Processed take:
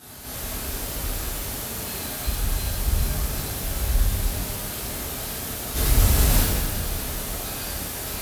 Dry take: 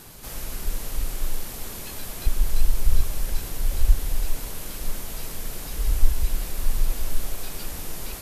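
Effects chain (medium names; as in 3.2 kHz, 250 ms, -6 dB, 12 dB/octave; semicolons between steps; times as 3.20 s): high-pass 41 Hz 24 dB/octave; 5.75–6.40 s: waveshaping leveller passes 3; pitch-shifted reverb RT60 1.3 s, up +12 st, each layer -8 dB, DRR -11 dB; trim -6 dB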